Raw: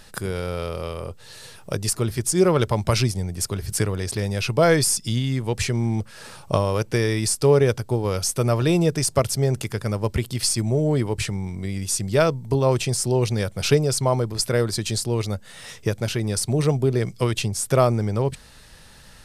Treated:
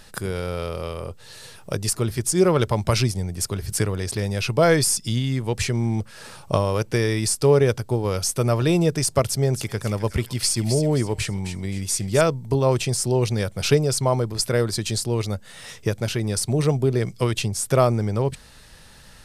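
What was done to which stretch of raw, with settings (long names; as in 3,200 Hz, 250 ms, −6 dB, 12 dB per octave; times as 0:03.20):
0:09.27–0:12.21: delay with a high-pass on its return 262 ms, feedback 36%, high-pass 1,600 Hz, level −8 dB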